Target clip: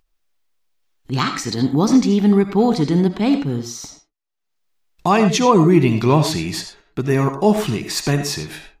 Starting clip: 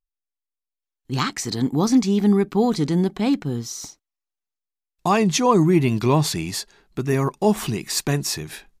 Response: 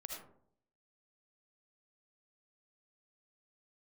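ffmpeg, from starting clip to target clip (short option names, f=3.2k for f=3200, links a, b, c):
-filter_complex "[0:a]acompressor=mode=upward:threshold=-37dB:ratio=2.5,agate=range=-13dB:threshold=-50dB:ratio=16:detection=peak,asplit=2[a][b];[1:a]atrim=start_sample=2205,atrim=end_sample=6174,lowpass=6.4k[c];[b][c]afir=irnorm=-1:irlink=0,volume=3.5dB[d];[a][d]amix=inputs=2:normalize=0,volume=-1.5dB"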